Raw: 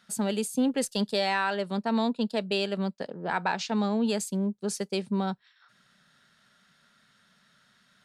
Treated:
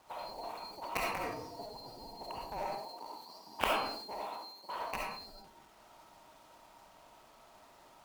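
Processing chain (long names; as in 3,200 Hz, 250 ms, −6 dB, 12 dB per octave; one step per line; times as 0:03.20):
neighbouring bands swapped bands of 4,000 Hz
0:02.61–0:04.80: high-pass filter 200 Hz 24 dB per octave
downward compressor 16 to 1, threshold −33 dBFS, peak gain reduction 13 dB
low-pass with resonance 950 Hz, resonance Q 9.2
log-companded quantiser 6 bits
harmonic generator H 3 −7 dB, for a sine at −24.5 dBFS
comb and all-pass reverb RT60 0.52 s, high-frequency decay 0.7×, pre-delay 25 ms, DRR −3 dB
level that may fall only so fast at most 58 dB per second
level +12.5 dB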